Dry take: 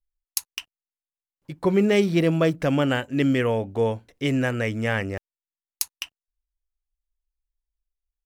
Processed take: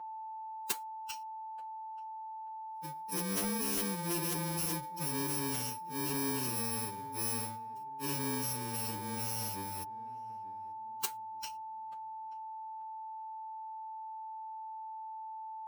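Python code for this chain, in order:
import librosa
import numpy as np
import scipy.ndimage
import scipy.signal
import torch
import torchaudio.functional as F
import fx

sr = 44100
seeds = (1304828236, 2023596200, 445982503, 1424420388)

y = fx.bit_reversed(x, sr, seeds[0], block=64)
y = y + 10.0 ** (-31.0 / 20.0) * np.sin(2.0 * np.pi * 880.0 * np.arange(len(y)) / sr)
y = fx.highpass(y, sr, hz=160.0, slope=6)
y = fx.echo_filtered(y, sr, ms=465, feedback_pct=33, hz=870.0, wet_db=-17.5)
y = fx.cheby_harmonics(y, sr, harmonics=(3,), levels_db=(-7,), full_scale_db=-4.5)
y = fx.stretch_vocoder(y, sr, factor=1.9)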